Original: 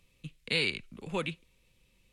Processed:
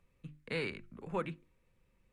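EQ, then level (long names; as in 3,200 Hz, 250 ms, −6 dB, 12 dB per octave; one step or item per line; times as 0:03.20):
high shelf with overshoot 2,200 Hz −11 dB, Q 1.5
mains-hum notches 50/100/150/200/250/300/350 Hz
−2.5 dB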